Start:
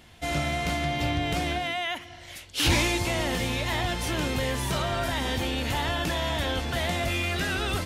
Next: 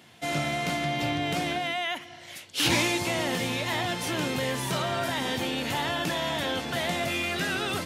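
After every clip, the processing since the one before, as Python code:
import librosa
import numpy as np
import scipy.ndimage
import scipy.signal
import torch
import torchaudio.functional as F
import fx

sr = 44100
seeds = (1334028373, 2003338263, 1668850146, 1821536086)

y = scipy.signal.sosfilt(scipy.signal.butter(4, 120.0, 'highpass', fs=sr, output='sos'), x)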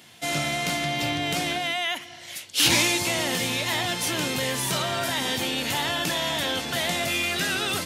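y = fx.high_shelf(x, sr, hz=2800.0, db=9.0)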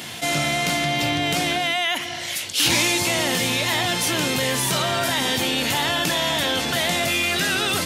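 y = fx.env_flatten(x, sr, amount_pct=50)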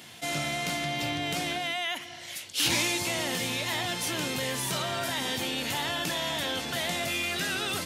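y = fx.upward_expand(x, sr, threshold_db=-32.0, expansion=1.5)
y = F.gain(torch.from_numpy(y), -6.5).numpy()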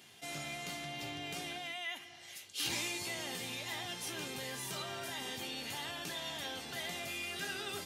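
y = fx.comb_fb(x, sr, f0_hz=400.0, decay_s=0.19, harmonics='all', damping=0.0, mix_pct=80)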